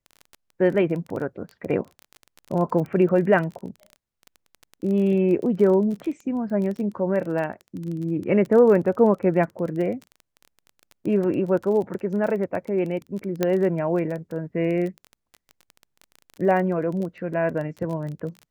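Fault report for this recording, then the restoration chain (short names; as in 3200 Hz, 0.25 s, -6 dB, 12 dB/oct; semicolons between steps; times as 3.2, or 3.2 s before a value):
crackle 21/s -30 dBFS
13.43 pop -8 dBFS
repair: de-click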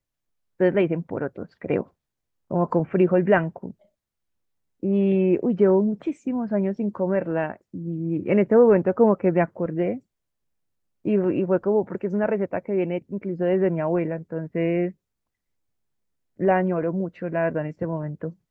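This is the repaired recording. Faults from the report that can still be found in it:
none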